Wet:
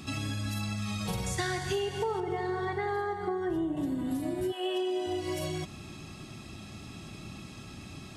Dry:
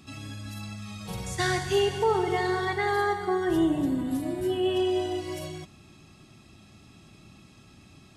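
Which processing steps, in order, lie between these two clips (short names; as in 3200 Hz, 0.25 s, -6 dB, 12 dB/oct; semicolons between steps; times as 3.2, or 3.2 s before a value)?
2.2–3.77 high shelf 2000 Hz -11 dB; 4.51–5.06 HPF 600 Hz -> 180 Hz 24 dB/oct; compressor 6:1, threshold -38 dBFS, peak gain reduction 16.5 dB; gain +8 dB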